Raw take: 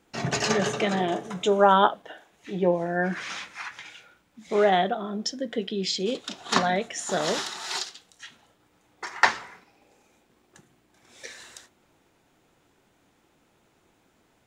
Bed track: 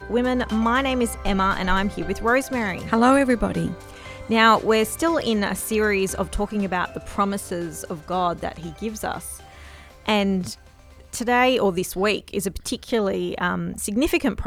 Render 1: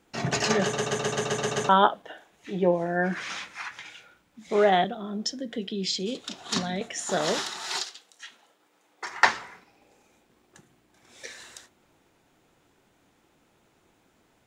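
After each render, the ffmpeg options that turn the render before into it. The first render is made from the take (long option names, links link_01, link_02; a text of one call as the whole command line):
ffmpeg -i in.wav -filter_complex "[0:a]asettb=1/sr,asplit=3[link_01][link_02][link_03];[link_01]atrim=end=4.844[link_04];[link_02]atrim=start=4.84:end=6.81,asetpts=PTS-STARTPTS,afade=type=in:duration=0.004:curve=qsin,afade=type=out:start_time=1.966:duration=0.004:curve=qsin,acrossover=split=320|3000[link_05][link_06][link_07];[link_06]acompressor=threshold=-42dB:ratio=2:attack=3.2:release=140:knee=2.83:detection=peak[link_08];[link_05][link_08][link_07]amix=inputs=3:normalize=0[link_09];[link_03]atrim=start=6.806[link_10];[link_04][link_09]acrossfade=duration=0.004:curve1=hsin:curve2=qsin[link_11];[link_11][link_10]acrossfade=duration=0.004:curve1=qsin:curve2=hsin,asettb=1/sr,asplit=3[link_12][link_13][link_14];[link_12]atrim=end=7.814[link_15];[link_13]atrim=start=7.81:end=9.06,asetpts=PTS-STARTPTS,afade=type=in:duration=0.004:curve=qsin,afade=type=out:start_time=1.246:duration=0.004:curve=qsin,highpass=330[link_16];[link_14]atrim=start=9.056[link_17];[link_15][link_16]acrossfade=duration=0.004:curve1=hsin:curve2=qsin[link_18];[link_18][link_17]acrossfade=duration=0.004:curve1=qsin:curve2=hsin,asplit=9[link_19][link_20][link_21][link_22][link_23][link_24][link_25][link_26][link_27];[link_19]atrim=end=0.782[link_28];[link_20]atrim=start=0.648:end=0.782[link_29];[link_21]atrim=start=0.648:end=0.782[link_30];[link_22]atrim=start=0.648:end=0.782[link_31];[link_23]atrim=start=0.648:end=0.782[link_32];[link_24]atrim=start=0.648:end=0.782[link_33];[link_25]atrim=start=0.648:end=0.782[link_34];[link_26]atrim=start=0.648:end=0.782[link_35];[link_27]atrim=start=1.688[link_36];[link_28][link_29]acrossfade=duration=0.004:curve1=hsin:curve2=hsin[link_37];[link_37][link_30]acrossfade=duration=0.004:curve1=hsin:curve2=hsin[link_38];[link_38][link_31]acrossfade=duration=0.004:curve1=hsin:curve2=hsin[link_39];[link_39][link_32]acrossfade=duration=0.004:curve1=hsin:curve2=hsin[link_40];[link_40][link_33]acrossfade=duration=0.004:curve1=hsin:curve2=hsin[link_41];[link_41][link_34]acrossfade=duration=0.004:curve1=hsin:curve2=hsin[link_42];[link_42][link_35]acrossfade=duration=0.004:curve1=hsin:curve2=hsin[link_43];[link_43][link_36]acrossfade=duration=0.004:curve1=hsin:curve2=hsin" out.wav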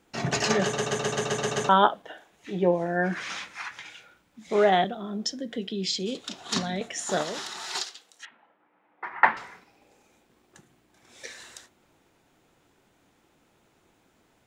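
ffmpeg -i in.wav -filter_complex "[0:a]asplit=3[link_01][link_02][link_03];[link_01]afade=type=out:start_time=7.22:duration=0.02[link_04];[link_02]acompressor=threshold=-33dB:ratio=2.5:attack=3.2:release=140:knee=1:detection=peak,afade=type=in:start_time=7.22:duration=0.02,afade=type=out:start_time=7.74:duration=0.02[link_05];[link_03]afade=type=in:start_time=7.74:duration=0.02[link_06];[link_04][link_05][link_06]amix=inputs=3:normalize=0,asettb=1/sr,asplit=3[link_07][link_08][link_09];[link_07]atrim=end=8.254[link_10];[link_08]atrim=start=8.25:end=9.37,asetpts=PTS-STARTPTS,afade=type=in:duration=0.004:curve=qsin,afade=type=out:start_time=1.116:duration=0.004:curve=qsin,highpass=frequency=110:width=0.5412,highpass=frequency=110:width=1.3066,equalizer=frequency=200:width_type=q:width=4:gain=3,equalizer=frequency=420:width_type=q:width=4:gain=-5,equalizer=frequency=910:width_type=q:width=4:gain=3,lowpass=frequency=2300:width=0.5412,lowpass=frequency=2300:width=1.3066[link_11];[link_09]atrim=start=9.366[link_12];[link_10][link_11]acrossfade=duration=0.004:curve1=hsin:curve2=qsin[link_13];[link_13][link_12]acrossfade=duration=0.004:curve1=qsin:curve2=hsin" out.wav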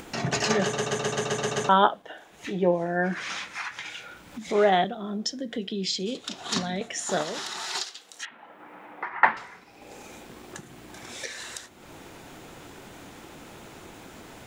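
ffmpeg -i in.wav -af "acompressor=mode=upward:threshold=-28dB:ratio=2.5" out.wav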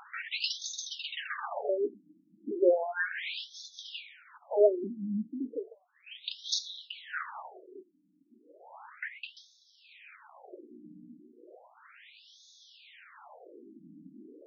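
ffmpeg -i in.wav -af "afftfilt=real='re*between(b*sr/1024,220*pow(4800/220,0.5+0.5*sin(2*PI*0.34*pts/sr))/1.41,220*pow(4800/220,0.5+0.5*sin(2*PI*0.34*pts/sr))*1.41)':imag='im*between(b*sr/1024,220*pow(4800/220,0.5+0.5*sin(2*PI*0.34*pts/sr))/1.41,220*pow(4800/220,0.5+0.5*sin(2*PI*0.34*pts/sr))*1.41)':win_size=1024:overlap=0.75" out.wav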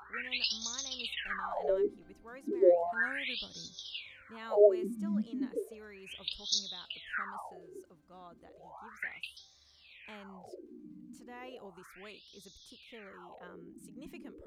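ffmpeg -i in.wav -i bed.wav -filter_complex "[1:a]volume=-30.5dB[link_01];[0:a][link_01]amix=inputs=2:normalize=0" out.wav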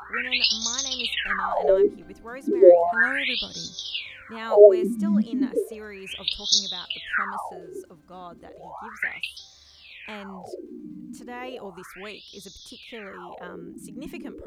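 ffmpeg -i in.wav -af "volume=11.5dB,alimiter=limit=-1dB:level=0:latency=1" out.wav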